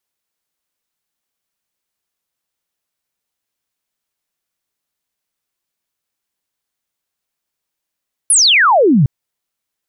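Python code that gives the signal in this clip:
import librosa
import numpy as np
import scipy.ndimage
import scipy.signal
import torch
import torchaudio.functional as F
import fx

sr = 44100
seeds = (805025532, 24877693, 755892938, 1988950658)

y = fx.laser_zap(sr, level_db=-7.0, start_hz=11000.0, end_hz=120.0, length_s=0.76, wave='sine')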